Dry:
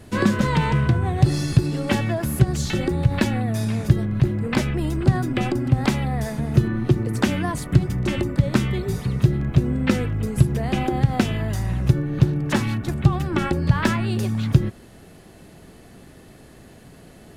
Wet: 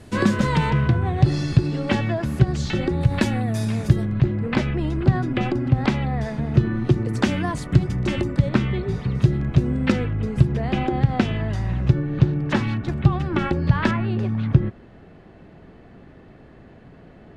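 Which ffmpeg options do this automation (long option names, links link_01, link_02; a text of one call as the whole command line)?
ffmpeg -i in.wav -af "asetnsamples=nb_out_samples=441:pad=0,asendcmd='0.7 lowpass f 4800;3.01 lowpass f 11000;4.13 lowpass f 4000;6.71 lowpass f 7000;8.49 lowpass f 3500;9.15 lowpass f 7100;9.92 lowpass f 4000;13.91 lowpass f 2200',lowpass=9800" out.wav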